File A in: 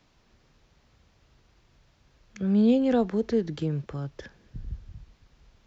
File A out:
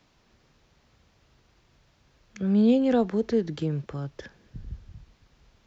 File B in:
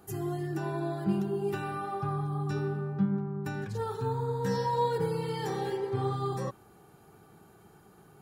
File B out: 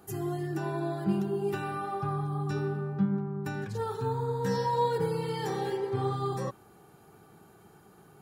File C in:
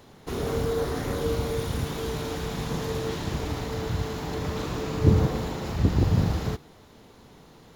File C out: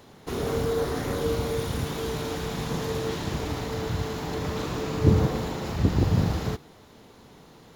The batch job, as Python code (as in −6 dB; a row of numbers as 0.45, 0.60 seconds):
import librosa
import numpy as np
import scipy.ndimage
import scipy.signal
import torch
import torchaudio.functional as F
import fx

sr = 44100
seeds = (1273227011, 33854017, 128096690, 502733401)

y = fx.low_shelf(x, sr, hz=62.0, db=-6.0)
y = y * librosa.db_to_amplitude(1.0)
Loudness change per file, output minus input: +0.5, +0.5, 0.0 LU